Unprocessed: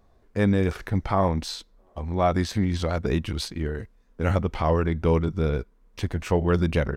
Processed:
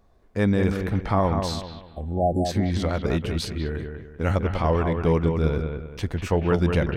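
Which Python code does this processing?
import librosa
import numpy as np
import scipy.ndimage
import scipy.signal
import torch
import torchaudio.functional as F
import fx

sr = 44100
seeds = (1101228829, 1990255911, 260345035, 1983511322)

y = fx.spec_erase(x, sr, start_s=1.86, length_s=0.59, low_hz=850.0, high_hz=7200.0)
y = fx.echo_bbd(y, sr, ms=195, stages=4096, feedback_pct=35, wet_db=-6)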